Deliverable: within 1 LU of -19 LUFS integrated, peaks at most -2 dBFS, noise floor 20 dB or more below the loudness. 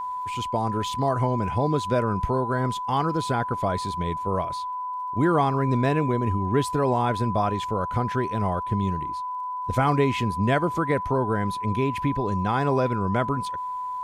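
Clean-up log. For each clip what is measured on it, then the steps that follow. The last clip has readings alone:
tick rate 48 per s; steady tone 1 kHz; tone level -28 dBFS; loudness -25.0 LUFS; peak level -9.0 dBFS; loudness target -19.0 LUFS
-> de-click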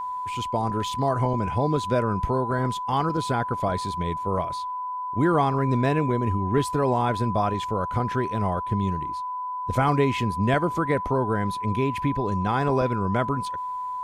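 tick rate 0 per s; steady tone 1 kHz; tone level -28 dBFS
-> band-stop 1 kHz, Q 30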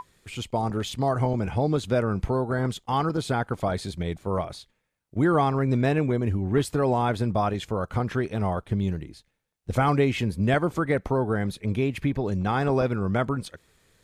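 steady tone not found; loudness -26.0 LUFS; peak level -9.5 dBFS; loudness target -19.0 LUFS
-> trim +7 dB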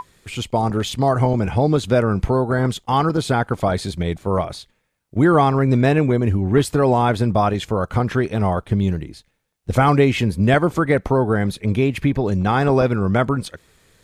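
loudness -19.0 LUFS; peak level -2.5 dBFS; noise floor -67 dBFS

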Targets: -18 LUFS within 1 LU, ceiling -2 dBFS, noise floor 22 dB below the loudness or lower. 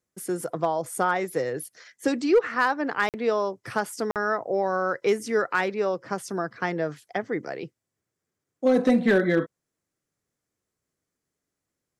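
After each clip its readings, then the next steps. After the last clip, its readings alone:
clipped samples 0.3%; clipping level -13.0 dBFS; dropouts 2; longest dropout 48 ms; loudness -26.0 LUFS; peak level -13.0 dBFS; loudness target -18.0 LUFS
-> clip repair -13 dBFS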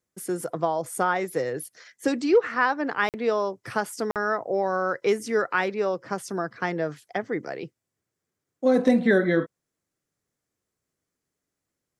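clipped samples 0.0%; dropouts 2; longest dropout 48 ms
-> interpolate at 3.09/4.11 s, 48 ms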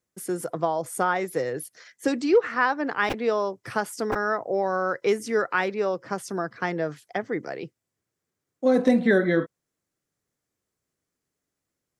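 dropouts 0; loudness -25.5 LUFS; peak level -8.5 dBFS; loudness target -18.0 LUFS
-> trim +7.5 dB; peak limiter -2 dBFS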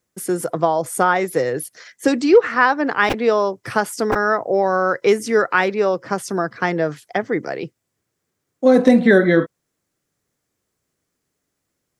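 loudness -18.0 LUFS; peak level -2.0 dBFS; noise floor -77 dBFS

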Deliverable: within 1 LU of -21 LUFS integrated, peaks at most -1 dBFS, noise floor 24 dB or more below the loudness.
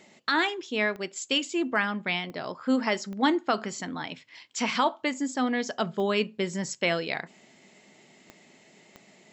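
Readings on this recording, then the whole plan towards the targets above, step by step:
clicks found 6; loudness -28.5 LUFS; peak level -13.0 dBFS; loudness target -21.0 LUFS
-> de-click; trim +7.5 dB

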